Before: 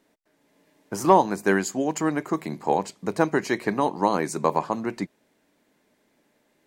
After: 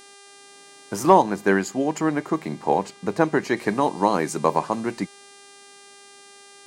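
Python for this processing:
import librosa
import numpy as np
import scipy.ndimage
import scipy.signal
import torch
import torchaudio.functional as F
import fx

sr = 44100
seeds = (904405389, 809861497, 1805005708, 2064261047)

y = fx.dmg_buzz(x, sr, base_hz=400.0, harmonics=26, level_db=-50.0, tilt_db=-2, odd_only=False)
y = fx.high_shelf(y, sr, hz=4800.0, db=-7.0, at=(1.22, 3.57))
y = y * librosa.db_to_amplitude(2.0)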